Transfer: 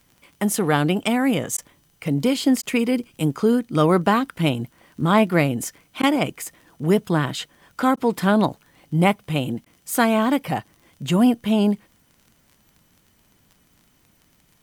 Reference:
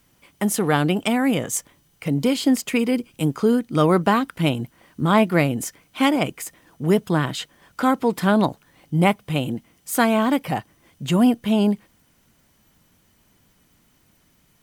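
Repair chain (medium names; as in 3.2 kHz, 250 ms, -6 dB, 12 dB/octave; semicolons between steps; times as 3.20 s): de-click; interpolate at 1.57/2.62/6.02/7.96/9.65 s, 10 ms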